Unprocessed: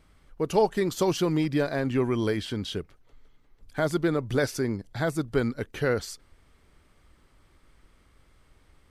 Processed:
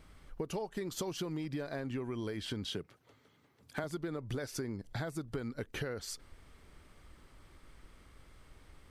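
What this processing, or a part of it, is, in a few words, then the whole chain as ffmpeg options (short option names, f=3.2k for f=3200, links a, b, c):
serial compression, leveller first: -filter_complex "[0:a]asettb=1/sr,asplit=3[a][b][c];[a]atrim=end=2.714[d];[b]atrim=start=2.71:end=3.84,asetpts=PTS-STARTPTS,afade=t=in:d=0.004:c=qsin,afade=t=out:st=1.126:d=0.004:c=qsin,highpass=f=100:w=0.5412,highpass=f=100:w=1.3066[e];[c]atrim=start=3.836[f];[d][e]acrossfade=d=0.004:c1=hsin:c2=qsin[g];[g][f]acrossfade=d=0.004:c1=qsin:c2=hsin,acompressor=threshold=-27dB:ratio=2.5,acompressor=threshold=-38dB:ratio=5,volume=2dB"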